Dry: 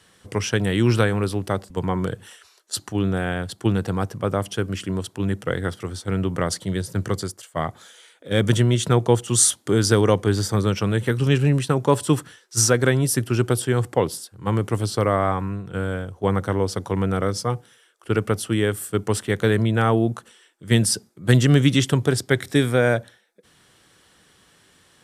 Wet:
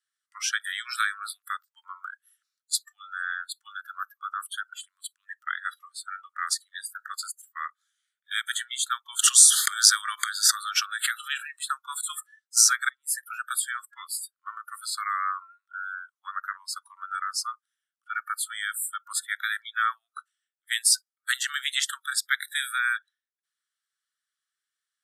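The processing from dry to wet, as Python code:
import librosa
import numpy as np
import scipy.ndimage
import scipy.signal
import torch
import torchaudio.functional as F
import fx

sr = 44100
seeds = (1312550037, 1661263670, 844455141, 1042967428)

y = fx.pre_swell(x, sr, db_per_s=21.0, at=(9.19, 11.56))
y = fx.edit(y, sr, fx.fade_in_span(start_s=12.89, length_s=0.41), tone=tone)
y = scipy.signal.sosfilt(scipy.signal.butter(12, 1200.0, 'highpass', fs=sr, output='sos'), y)
y = fx.noise_reduce_blind(y, sr, reduce_db=30)
y = fx.peak_eq(y, sr, hz=2600.0, db=-7.0, octaves=0.67)
y = y * librosa.db_to_amplitude(2.5)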